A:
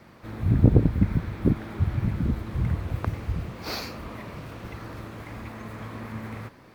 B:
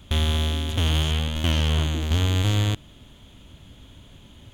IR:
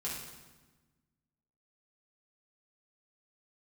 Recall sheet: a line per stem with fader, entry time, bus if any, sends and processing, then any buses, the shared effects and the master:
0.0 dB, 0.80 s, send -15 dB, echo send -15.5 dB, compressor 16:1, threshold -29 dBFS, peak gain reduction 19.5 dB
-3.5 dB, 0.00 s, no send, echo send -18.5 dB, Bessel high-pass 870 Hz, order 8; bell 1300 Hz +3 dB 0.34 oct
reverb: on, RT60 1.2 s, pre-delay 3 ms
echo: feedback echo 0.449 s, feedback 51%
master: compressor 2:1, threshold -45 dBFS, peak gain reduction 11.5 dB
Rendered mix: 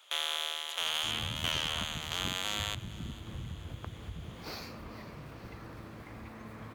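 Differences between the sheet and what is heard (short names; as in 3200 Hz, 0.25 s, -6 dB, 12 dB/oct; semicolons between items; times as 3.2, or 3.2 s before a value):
stem A 0.0 dB -> -9.0 dB; master: missing compressor 2:1, threshold -45 dBFS, peak gain reduction 11.5 dB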